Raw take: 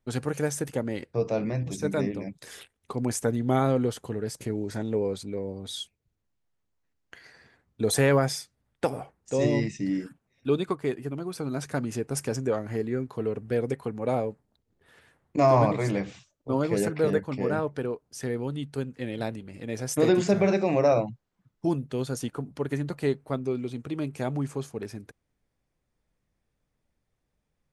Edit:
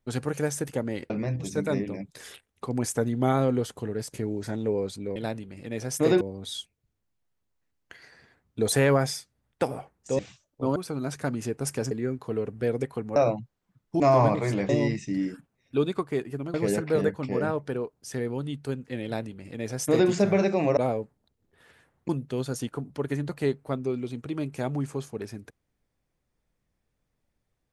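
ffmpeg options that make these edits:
-filter_complex "[0:a]asplit=13[s0][s1][s2][s3][s4][s5][s6][s7][s8][s9][s10][s11][s12];[s0]atrim=end=1.102[s13];[s1]atrim=start=1.368:end=5.432[s14];[s2]atrim=start=19.128:end=20.182[s15];[s3]atrim=start=5.428:end=9.412[s16];[s4]atrim=start=16.058:end=16.632[s17];[s5]atrim=start=11.258:end=12.412[s18];[s6]atrim=start=12.798:end=14.052[s19];[s7]atrim=start=20.858:end=21.702[s20];[s8]atrim=start=15.368:end=16.062[s21];[s9]atrim=start=9.408:end=11.262[s22];[s10]atrim=start=16.628:end=20.862[s23];[s11]atrim=start=14.048:end=15.372[s24];[s12]atrim=start=21.698[s25];[s13][s14]acrossfade=d=0.004:c1=hsin:c2=hsin[s26];[s26][s15]acrossfade=d=0.004:c1=hsin:c2=hsin[s27];[s27][s16]acrossfade=d=0.004:c1=hsin:c2=hsin[s28];[s28][s17]acrossfade=d=0.004:c1=hsin:c2=hsin[s29];[s29][s18]acrossfade=d=0.004:c1=hsin:c2=hsin[s30];[s30][s19]acrossfade=d=0.004:c1=hsin:c2=hsin[s31];[s31][s20]acrossfade=d=0.004:c1=hsin:c2=hsin[s32];[s32][s21]acrossfade=d=0.004:c1=hsin:c2=hsin[s33];[s33][s22]acrossfade=d=0.004:c1=hsin:c2=hsin[s34];[s34][s23]acrossfade=d=0.004:c1=hsin:c2=hsin[s35];[s35][s24]acrossfade=d=0.004:c1=hsin:c2=hsin[s36];[s36][s25]acrossfade=d=0.004:c1=hsin:c2=hsin"

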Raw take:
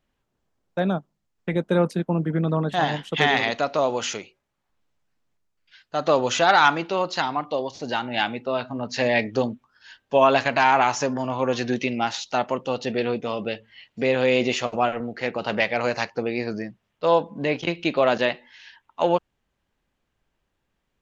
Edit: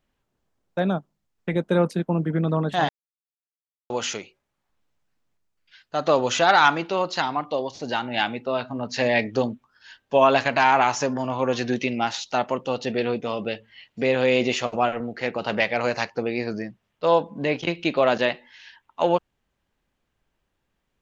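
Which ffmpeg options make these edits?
-filter_complex "[0:a]asplit=3[s0][s1][s2];[s0]atrim=end=2.89,asetpts=PTS-STARTPTS,afade=t=out:st=2.886:d=0.004:c=hsin[s3];[s1]atrim=start=2.89:end=3.9,asetpts=PTS-STARTPTS,volume=0[s4];[s2]atrim=start=3.9,asetpts=PTS-STARTPTS,afade=t=in:d=0.004:c=hsin[s5];[s3][s4][s5]concat=n=3:v=0:a=1"

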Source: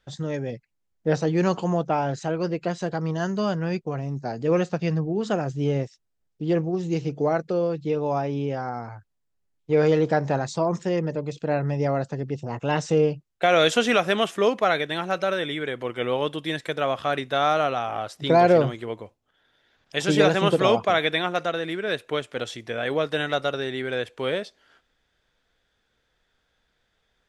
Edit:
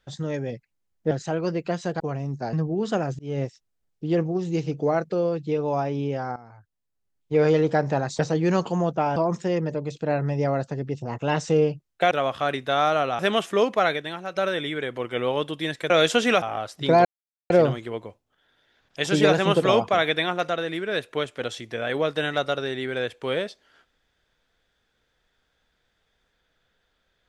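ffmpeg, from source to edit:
-filter_complex "[0:a]asplit=14[s0][s1][s2][s3][s4][s5][s6][s7][s8][s9][s10][s11][s12][s13];[s0]atrim=end=1.112[s14];[s1]atrim=start=2.078:end=2.972[s15];[s2]atrim=start=3.828:end=4.362[s16];[s3]atrim=start=4.908:end=5.57,asetpts=PTS-STARTPTS,afade=t=out:st=0.658:d=0.004:c=hsin[s17];[s4]atrim=start=5.57:end=8.74,asetpts=PTS-STARTPTS,afade=t=in:d=0.25,afade=t=out:st=3.166:d=0.004:c=hsin:silence=0.177828[s18];[s5]atrim=start=8.74:end=10.572,asetpts=PTS-STARTPTS,afade=t=in:d=0.99:silence=0.177828[s19];[s6]atrim=start=1.108:end=2.082[s20];[s7]atrim=start=10.568:end=13.522[s21];[s8]atrim=start=16.748:end=17.832[s22];[s9]atrim=start=14.038:end=15.21,asetpts=PTS-STARTPTS,afade=t=out:st=0.692:d=0.48:c=qua:silence=0.398107[s23];[s10]atrim=start=15.21:end=16.752,asetpts=PTS-STARTPTS,afade=t=in:d=0.004:c=hsin:silence=0.398107[s24];[s11]atrim=start=13.518:end=14.042[s25];[s12]atrim=start=17.828:end=18.46,asetpts=PTS-STARTPTS,afade=t=out:st=0.628:d=0.004:c=hsin,apad=pad_dur=0.45[s26];[s13]atrim=start=18.46,asetpts=PTS-STARTPTS,afade=t=in:d=0.004:c=hsin[s27];[s14][s15]acrossfade=d=0.004:c1=hsin:c2=hsin[s28];[s28][s16]acrossfade=d=0.004:c1=hsin:c2=hsin[s29];[s17][s18][s19]concat=n=3:v=0:a=1[s30];[s29][s30]acrossfade=d=0.004:c1=hsin:c2=hsin[s31];[s31][s20]acrossfade=d=0.004:c1=hsin:c2=hsin[s32];[s32][s21]acrossfade=d=0.004:c1=hsin:c2=hsin[s33];[s33][s22]acrossfade=d=0.004:c1=hsin:c2=hsin[s34];[s23][s24]concat=n=2:v=0:a=1[s35];[s34][s35]acrossfade=d=0.004:c1=hsin:c2=hsin[s36];[s36][s25]acrossfade=d=0.004:c1=hsin:c2=hsin[s37];[s26][s27]concat=n=2:v=0:a=1[s38];[s37][s38]acrossfade=d=0.004:c1=hsin:c2=hsin"

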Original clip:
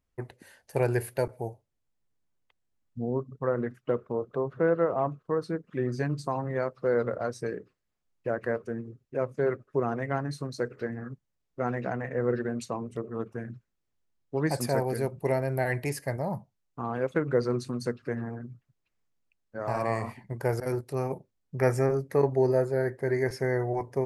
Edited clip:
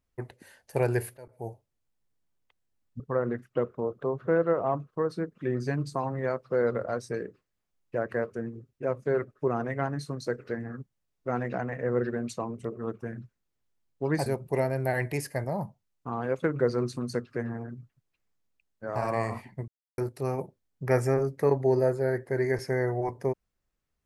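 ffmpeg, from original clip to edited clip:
-filter_complex "[0:a]asplit=6[s0][s1][s2][s3][s4][s5];[s0]atrim=end=1.17,asetpts=PTS-STARTPTS,afade=t=out:st=1.166:d=0.004:c=hsin:silence=0.0841395[s6];[s1]atrim=start=1.17:end=3.002,asetpts=PTS-STARTPTS,afade=t=in:d=0.33:c=qua:silence=0.0841395[s7];[s2]atrim=start=3.318:end=14.582[s8];[s3]atrim=start=14.978:end=20.4,asetpts=PTS-STARTPTS,afade=t=out:st=5.418:d=0.004:c=hsin[s9];[s4]atrim=start=20.4:end=20.7,asetpts=PTS-STARTPTS,volume=0[s10];[s5]atrim=start=20.7,asetpts=PTS-STARTPTS,afade=t=in:d=0.004:c=hsin[s11];[s6][s7]concat=n=2:v=0:a=1[s12];[s12][s8]acrossfade=d=0.004:c1=hsin:c2=hsin[s13];[s9][s10][s11]concat=n=3:v=0:a=1[s14];[s13][s14]acrossfade=d=0.004:c1=hsin:c2=hsin"

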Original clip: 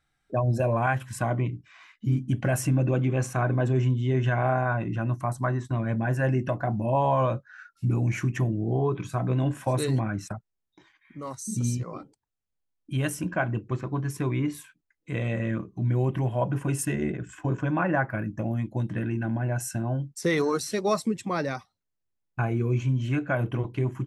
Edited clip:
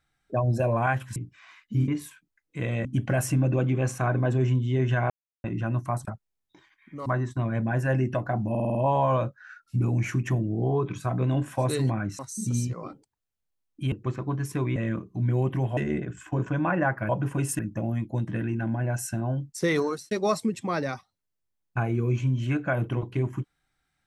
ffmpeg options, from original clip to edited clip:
-filter_complex "[0:a]asplit=20[s0][s1][s2][s3][s4][s5][s6][s7][s8][s9][s10][s11][s12][s13][s14][s15][s16][s17][s18][s19];[s0]atrim=end=1.162[s20];[s1]atrim=start=1.478:end=2.202[s21];[s2]atrim=start=14.408:end=15.382[s22];[s3]atrim=start=2.198:end=4.45,asetpts=PTS-STARTPTS,afade=t=out:st=2.248:d=0.004:c=hsin[s23];[s4]atrim=start=4.45:end=4.79,asetpts=PTS-STARTPTS,volume=0[s24];[s5]atrim=start=4.79:end=5.402,asetpts=PTS-STARTPTS,afade=t=in:d=0.004:c=hsin[s25];[s6]atrim=start=10.278:end=11.292[s26];[s7]atrim=start=5.398:end=6.892[s27];[s8]atrim=start=6.838:end=6.892[s28];[s9]atrim=start=6.838:end=6.892[s29];[s10]atrim=start=6.838:end=6.892[s30];[s11]atrim=start=6.838:end=6.892[s31];[s12]atrim=start=6.838:end=10.282[s32];[s13]atrim=start=11.288:end=13.022[s33];[s14]atrim=start=13.568:end=14.412[s34];[s15]atrim=start=15.378:end=16.392[s35];[s16]atrim=start=16.888:end=18.212[s36];[s17]atrim=start=16.388:end=16.892[s37];[s18]atrim=start=18.208:end=20.73,asetpts=PTS-STARTPTS,afade=t=out:st=2.212:d=0.31[s38];[s19]atrim=start=20.73,asetpts=PTS-STARTPTS,afade=t=in:d=0.004:c=hsin[s39];[s20][s21]acrossfade=d=0.004:c1=hsin:c2=hsin[s40];[s40][s22]acrossfade=d=0.004:c1=hsin:c2=hsin[s41];[s23][s24][s25]concat=n=3:v=0:a=1[s42];[s41][s42]acrossfade=d=0.004:c1=hsin:c2=hsin[s43];[s43][s26]acrossfade=d=0.004:c1=hsin:c2=hsin[s44];[s44][s27]acrossfade=d=0.004:c1=hsin:c2=hsin[s45];[s45][s28]acrossfade=d=0.004:c1=hsin:c2=hsin[s46];[s46][s29]acrossfade=d=0.004:c1=hsin:c2=hsin[s47];[s47][s30]acrossfade=d=0.004:c1=hsin:c2=hsin[s48];[s48][s31]acrossfade=d=0.004:c1=hsin:c2=hsin[s49];[s49][s32]acrossfade=d=0.004:c1=hsin:c2=hsin[s50];[s50][s33]acrossfade=d=0.004:c1=hsin:c2=hsin[s51];[s51][s34]acrossfade=d=0.004:c1=hsin:c2=hsin[s52];[s52][s35]acrossfade=d=0.004:c1=hsin:c2=hsin[s53];[s53][s36]acrossfade=d=0.004:c1=hsin:c2=hsin[s54];[s54][s37]acrossfade=d=0.004:c1=hsin:c2=hsin[s55];[s38][s39]concat=n=2:v=0:a=1[s56];[s55][s56]acrossfade=d=0.004:c1=hsin:c2=hsin"

